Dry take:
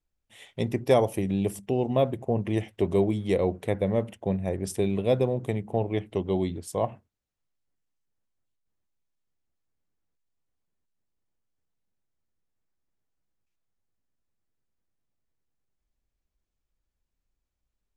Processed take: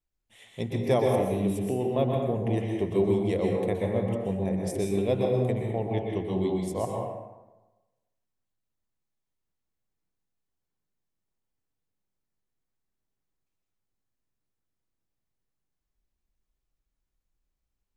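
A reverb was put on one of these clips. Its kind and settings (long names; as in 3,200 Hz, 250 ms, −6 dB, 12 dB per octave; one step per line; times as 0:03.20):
dense smooth reverb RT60 1.1 s, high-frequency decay 0.55×, pre-delay 110 ms, DRR 0 dB
level −4 dB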